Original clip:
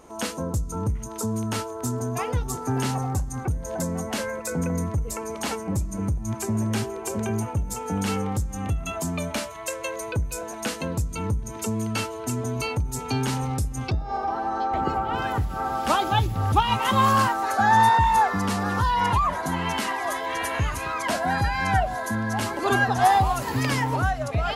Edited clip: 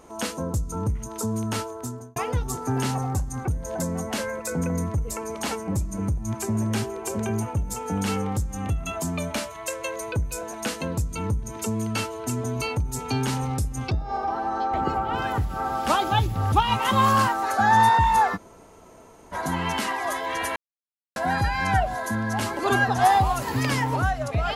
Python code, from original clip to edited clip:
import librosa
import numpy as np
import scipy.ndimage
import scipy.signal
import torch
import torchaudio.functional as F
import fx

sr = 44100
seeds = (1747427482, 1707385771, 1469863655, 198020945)

y = fx.edit(x, sr, fx.fade_out_span(start_s=1.64, length_s=0.52),
    fx.room_tone_fill(start_s=18.36, length_s=0.97, crossfade_s=0.04),
    fx.silence(start_s=20.56, length_s=0.6), tone=tone)